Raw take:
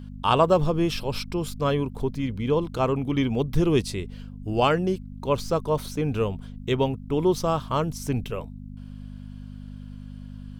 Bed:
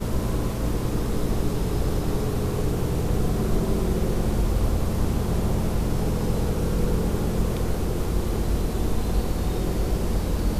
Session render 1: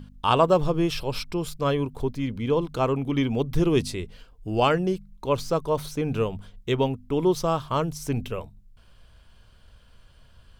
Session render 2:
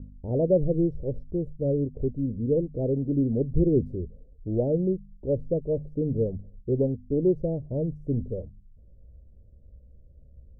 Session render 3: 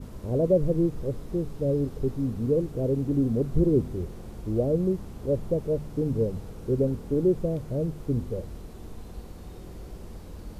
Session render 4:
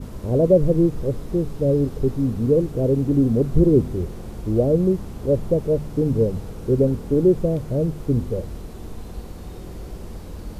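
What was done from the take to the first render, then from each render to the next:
hum removal 50 Hz, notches 5
elliptic low-pass filter 560 Hz, stop band 50 dB; parametric band 62 Hz +9 dB 0.68 octaves
mix in bed −17.5 dB
level +6.5 dB

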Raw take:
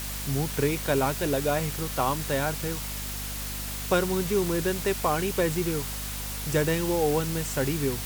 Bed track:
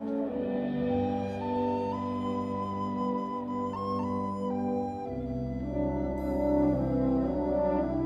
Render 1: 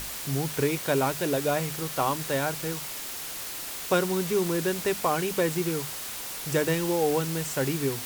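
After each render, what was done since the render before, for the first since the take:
mains-hum notches 50/100/150/200/250 Hz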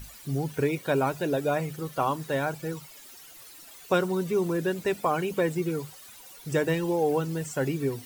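broadband denoise 16 dB, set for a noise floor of −36 dBFS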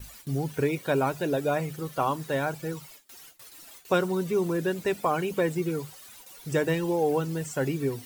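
noise gate with hold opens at −37 dBFS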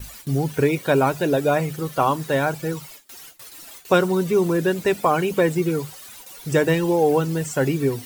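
level +7 dB

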